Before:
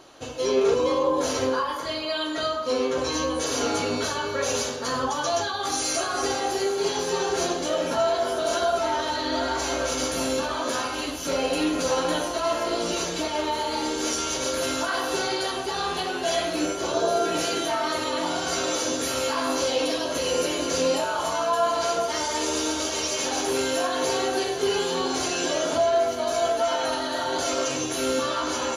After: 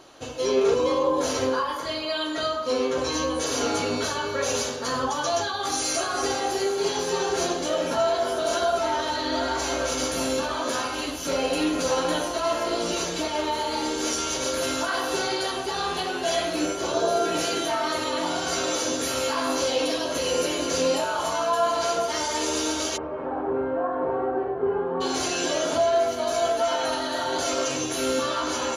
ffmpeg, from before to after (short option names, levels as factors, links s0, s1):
-filter_complex "[0:a]asplit=3[s0][s1][s2];[s0]afade=t=out:st=22.96:d=0.02[s3];[s1]lowpass=f=1300:w=0.5412,lowpass=f=1300:w=1.3066,afade=t=in:st=22.96:d=0.02,afade=t=out:st=25:d=0.02[s4];[s2]afade=t=in:st=25:d=0.02[s5];[s3][s4][s5]amix=inputs=3:normalize=0"